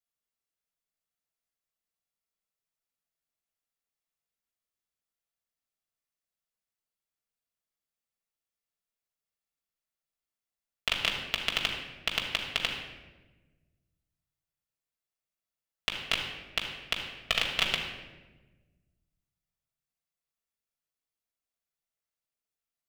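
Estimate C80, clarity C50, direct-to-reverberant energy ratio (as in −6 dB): 6.0 dB, 4.0 dB, −1.0 dB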